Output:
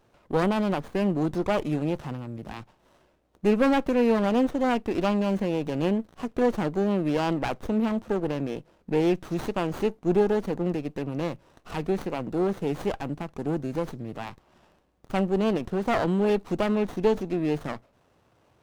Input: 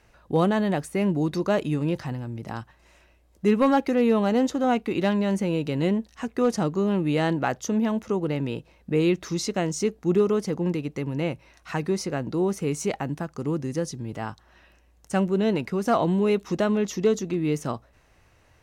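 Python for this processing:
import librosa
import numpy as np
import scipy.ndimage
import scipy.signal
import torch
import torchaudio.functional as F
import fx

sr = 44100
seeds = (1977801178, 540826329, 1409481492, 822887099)

y = scipy.signal.sosfilt(scipy.signal.butter(2, 130.0, 'highpass', fs=sr, output='sos'), x)
y = fx.running_max(y, sr, window=17)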